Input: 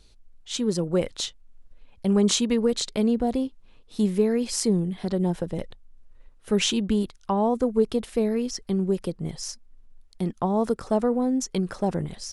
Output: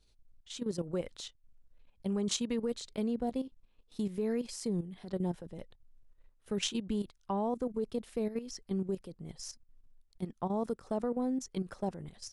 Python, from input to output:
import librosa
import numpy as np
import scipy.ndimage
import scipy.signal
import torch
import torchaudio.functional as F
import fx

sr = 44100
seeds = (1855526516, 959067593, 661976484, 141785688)

y = fx.level_steps(x, sr, step_db=12)
y = y * 10.0 ** (-7.5 / 20.0)